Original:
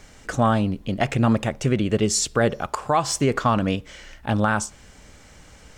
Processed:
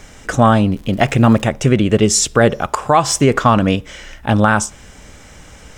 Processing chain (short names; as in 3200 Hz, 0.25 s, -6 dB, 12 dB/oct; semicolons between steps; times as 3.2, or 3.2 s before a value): notch 4400 Hz, Q 10; 0.72–1.44 crackle 210/s -38 dBFS; gain +8 dB